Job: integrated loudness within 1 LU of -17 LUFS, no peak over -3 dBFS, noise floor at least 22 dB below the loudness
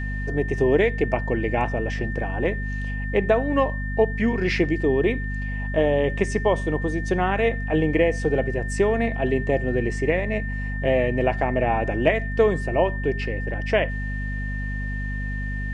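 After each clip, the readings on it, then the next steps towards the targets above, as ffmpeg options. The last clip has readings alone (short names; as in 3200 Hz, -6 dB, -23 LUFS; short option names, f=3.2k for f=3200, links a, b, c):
hum 50 Hz; harmonics up to 250 Hz; hum level -26 dBFS; steady tone 1800 Hz; tone level -33 dBFS; loudness -23.5 LUFS; peak -4.5 dBFS; loudness target -17.0 LUFS
-> -af "bandreject=f=50:t=h:w=6,bandreject=f=100:t=h:w=6,bandreject=f=150:t=h:w=6,bandreject=f=200:t=h:w=6,bandreject=f=250:t=h:w=6"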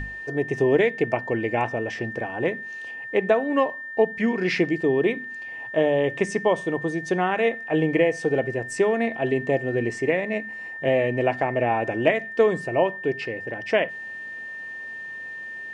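hum none; steady tone 1800 Hz; tone level -33 dBFS
-> -af "bandreject=f=1.8k:w=30"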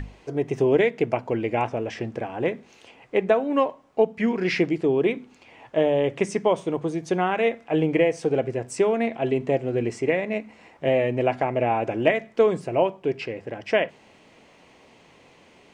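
steady tone none; loudness -24.0 LUFS; peak -5.0 dBFS; loudness target -17.0 LUFS
-> -af "volume=7dB,alimiter=limit=-3dB:level=0:latency=1"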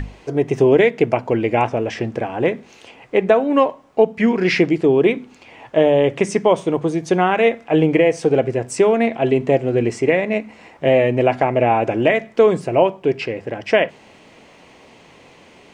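loudness -17.5 LUFS; peak -3.0 dBFS; noise floor -47 dBFS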